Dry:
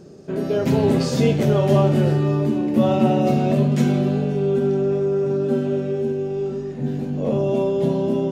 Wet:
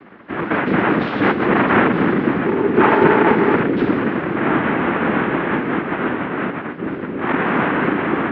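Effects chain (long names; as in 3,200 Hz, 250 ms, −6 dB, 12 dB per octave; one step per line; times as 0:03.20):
cochlear-implant simulation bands 3
single-sideband voice off tune −85 Hz 290–3,500 Hz
0:02.46–0:03.57: hollow resonant body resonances 410/870 Hz, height 10 dB
level +4 dB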